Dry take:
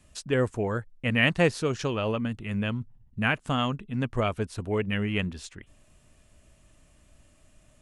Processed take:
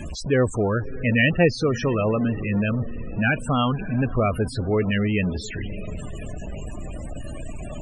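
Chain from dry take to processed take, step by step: jump at every zero crossing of -28.5 dBFS; echo that smears into a reverb 635 ms, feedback 46%, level -15 dB; loudest bins only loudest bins 32; trim +3.5 dB

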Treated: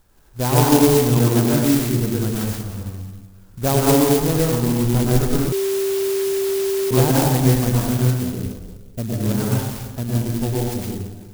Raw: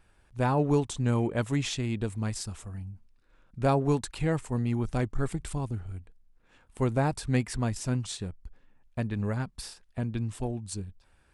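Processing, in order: 8.10–9.14 s: steep low-pass 690 Hz 36 dB/octave; reverberation RT60 1.4 s, pre-delay 98 ms, DRR -4.5 dB; 5.52–6.91 s: bleep 390 Hz -22 dBFS; sampling jitter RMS 0.12 ms; trim +4.5 dB

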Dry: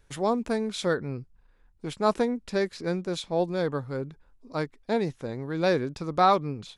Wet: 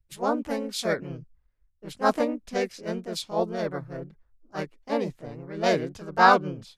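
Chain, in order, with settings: harmony voices +3 st -8 dB, +4 st -1 dB; three bands expanded up and down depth 70%; trim -4 dB

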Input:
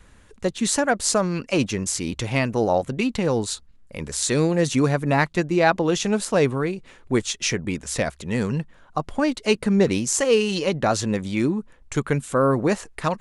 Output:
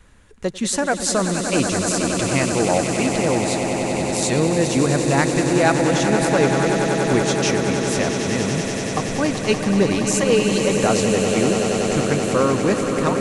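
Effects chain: echo with a slow build-up 95 ms, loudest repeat 8, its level -10 dB

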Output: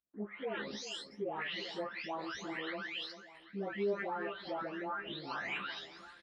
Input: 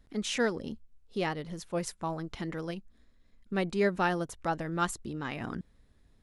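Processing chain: delay that grows with frequency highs late, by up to 675 ms; low-pass that closes with the level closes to 850 Hz, closed at -29.5 dBFS; low-pass 3.7 kHz 24 dB/octave; gate -55 dBFS, range -26 dB; differentiator; reverse; upward compressor, threshold -57 dBFS; reverse; peak limiter -50.5 dBFS, peak gain reduction 9.5 dB; doubling 15 ms -3 dB; echo whose repeats swap between lows and highs 393 ms, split 1.8 kHz, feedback 63%, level -12 dB; on a send at -20 dB: reverberation RT60 0.35 s, pre-delay 3 ms; on the sum: trim +18 dB

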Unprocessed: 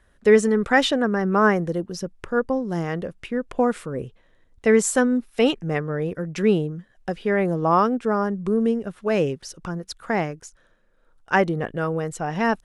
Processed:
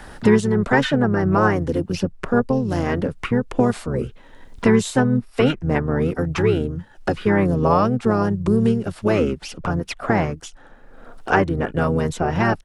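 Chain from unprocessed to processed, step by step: harmony voices -12 st -2 dB, -3 st -7 dB; three bands compressed up and down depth 70%

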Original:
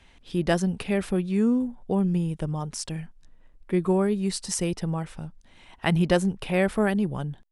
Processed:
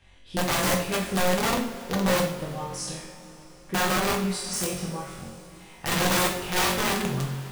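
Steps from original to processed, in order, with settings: flutter echo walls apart 3.8 m, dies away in 0.63 s; integer overflow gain 15 dB; two-slope reverb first 0.49 s, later 4.6 s, from -19 dB, DRR 0.5 dB; trim -6 dB

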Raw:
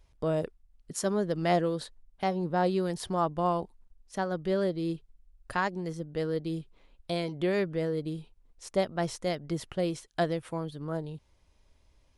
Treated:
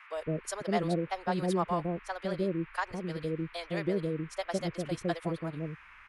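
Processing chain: band noise 950–2500 Hz -52 dBFS; time stretch by phase-locked vocoder 0.5×; bands offset in time highs, lows 160 ms, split 580 Hz

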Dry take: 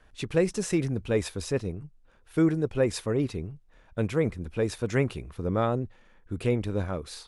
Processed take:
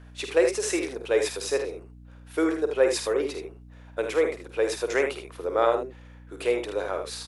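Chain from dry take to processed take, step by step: inverse Chebyshev high-pass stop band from 190 Hz, stop band 40 dB; early reflections 50 ms -8.5 dB, 78 ms -7.5 dB; hum 60 Hz, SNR 20 dB; trim +4.5 dB

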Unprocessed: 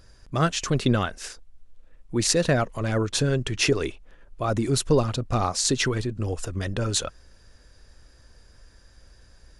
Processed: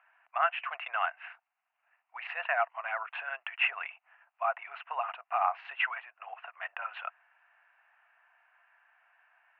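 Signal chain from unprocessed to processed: Chebyshev band-pass 690–2800 Hz, order 5

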